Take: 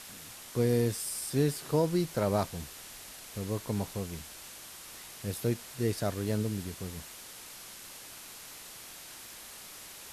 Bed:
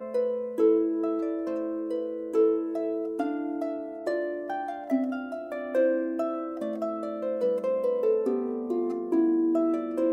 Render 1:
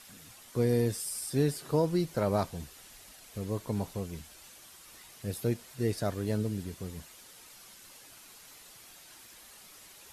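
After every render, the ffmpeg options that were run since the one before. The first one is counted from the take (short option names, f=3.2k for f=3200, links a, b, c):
-af "afftdn=nr=8:nf=-48"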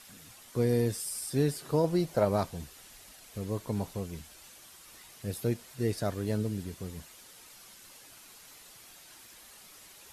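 -filter_complex "[0:a]asettb=1/sr,asplit=3[a][b][c];[a]atrim=end=1.844[d];[b]atrim=start=1.84:end=2.25,asetpts=PTS-STARTPTS,afade=t=in:d=0.004:c=qsin,afade=t=out:st=0.406:d=0.004:c=qsin,equalizer=f=670:t=o:w=0.77:g=8[e];[c]atrim=start=2.246[f];[d][e]acrossfade=d=0.004:c1=hsin:c2=qsin[g];[g][f]acrossfade=d=0.004:c1=qsin:c2=hsin"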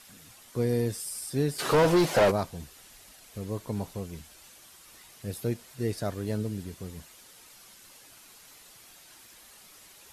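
-filter_complex "[0:a]asplit=3[a][b][c];[a]afade=t=out:st=1.58:d=0.02[d];[b]asplit=2[e][f];[f]highpass=f=720:p=1,volume=28dB,asoftclip=type=tanh:threshold=-13.5dB[g];[e][g]amix=inputs=2:normalize=0,lowpass=f=3.7k:p=1,volume=-6dB,afade=t=in:st=1.58:d=0.02,afade=t=out:st=2.3:d=0.02[h];[c]afade=t=in:st=2.3:d=0.02[i];[d][h][i]amix=inputs=3:normalize=0"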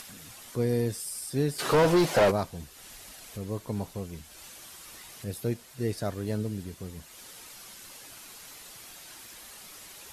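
-af "acompressor=mode=upward:threshold=-39dB:ratio=2.5"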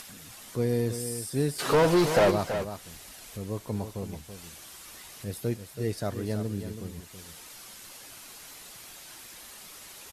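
-af "aecho=1:1:329:0.335"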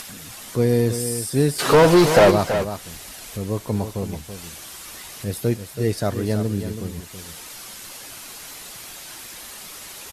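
-af "volume=8.5dB"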